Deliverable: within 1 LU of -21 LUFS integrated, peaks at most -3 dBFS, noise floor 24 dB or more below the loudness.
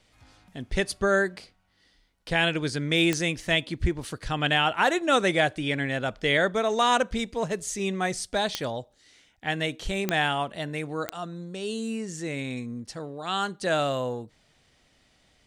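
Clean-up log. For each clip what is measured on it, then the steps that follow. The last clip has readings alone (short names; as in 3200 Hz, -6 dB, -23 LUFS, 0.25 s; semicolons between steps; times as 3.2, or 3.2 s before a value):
clicks 4; loudness -26.5 LUFS; peak -9.5 dBFS; loudness target -21.0 LUFS
-> de-click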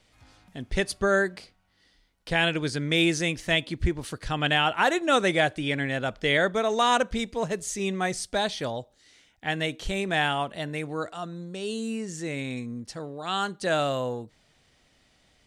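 clicks 0; loudness -26.5 LUFS; peak -10.5 dBFS; loudness target -21.0 LUFS
-> gain +5.5 dB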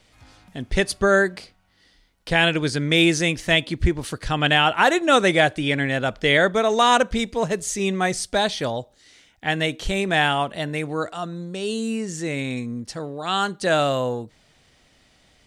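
loudness -21.0 LUFS; peak -5.0 dBFS; noise floor -59 dBFS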